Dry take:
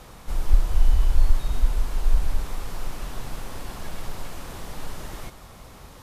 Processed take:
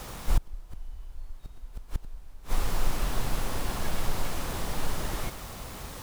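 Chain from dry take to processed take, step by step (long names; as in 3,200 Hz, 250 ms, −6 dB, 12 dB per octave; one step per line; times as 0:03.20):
bit-depth reduction 8 bits, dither none
gate with flip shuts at −15 dBFS, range −27 dB
level +4 dB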